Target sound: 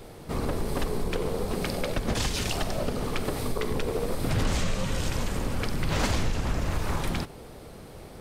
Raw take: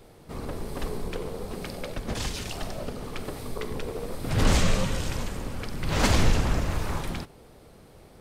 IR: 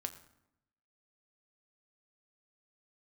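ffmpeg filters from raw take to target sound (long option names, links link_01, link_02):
-af "acompressor=threshold=-30dB:ratio=6,volume=7dB"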